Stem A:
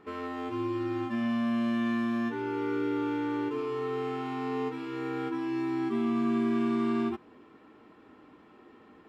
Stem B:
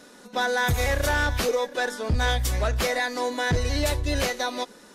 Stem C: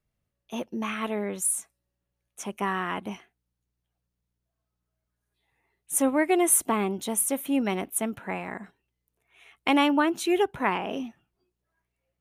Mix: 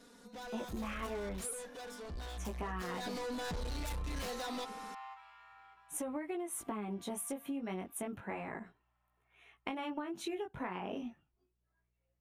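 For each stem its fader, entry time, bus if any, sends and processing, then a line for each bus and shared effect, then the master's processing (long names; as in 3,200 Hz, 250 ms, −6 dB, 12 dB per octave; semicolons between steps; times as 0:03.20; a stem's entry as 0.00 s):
−8.0 dB, 0.45 s, bus A, no send, echo send −21.5 dB, Butterworth high-pass 610 Hz 96 dB per octave; automatic ducking −14 dB, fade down 0.85 s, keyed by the third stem
0:02.52 −13.5 dB → 0:03.07 −5.5 dB, 0.00 s, no bus, no send, no echo send, comb filter 4.3 ms, depth 92%; brickwall limiter −16 dBFS, peak gain reduction 5 dB; soft clipping −31 dBFS, distortion −7 dB
−3.0 dB, 0.00 s, bus A, no send, no echo send, chorus effect 0.33 Hz, delay 16.5 ms, depth 5.4 ms
bus A: 0.0 dB, high-shelf EQ 3,900 Hz −8.5 dB; downward compressor, threshold −31 dBFS, peak gain reduction 9 dB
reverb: not used
echo: single-tap delay 395 ms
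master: low-shelf EQ 120 Hz +6 dB; downward compressor, threshold −36 dBFS, peak gain reduction 7.5 dB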